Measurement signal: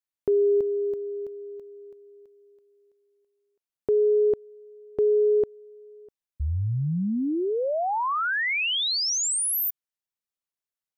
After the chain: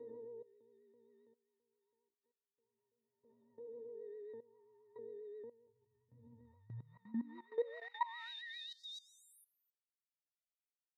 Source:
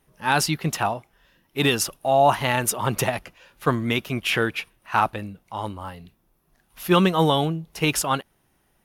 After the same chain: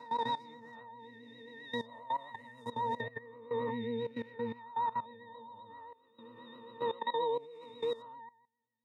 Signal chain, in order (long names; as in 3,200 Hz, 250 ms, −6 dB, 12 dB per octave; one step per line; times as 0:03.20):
peak hold with a rise ahead of every peak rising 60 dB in 2.25 s
resonances in every octave A#, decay 0.53 s
output level in coarse steps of 18 dB
high-pass filter 280 Hz 12 dB per octave
pitch vibrato 7.5 Hz 50 cents
level +5 dB